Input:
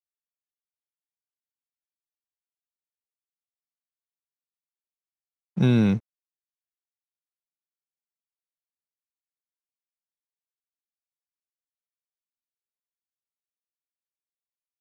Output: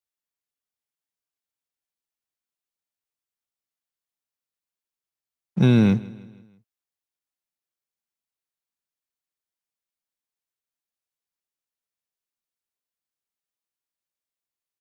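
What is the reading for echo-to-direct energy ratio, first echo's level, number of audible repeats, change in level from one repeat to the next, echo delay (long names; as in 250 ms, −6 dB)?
−19.5 dB, −20.5 dB, 3, −6.0 dB, 161 ms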